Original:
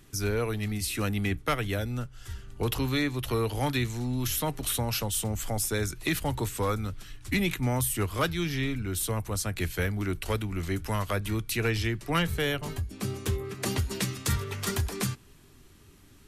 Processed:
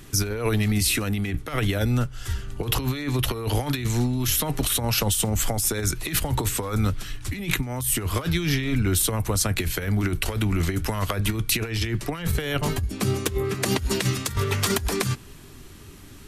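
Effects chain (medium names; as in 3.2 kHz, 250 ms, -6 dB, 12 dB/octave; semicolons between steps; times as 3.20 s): compressor with a negative ratio -31 dBFS, ratio -0.5; trim +8 dB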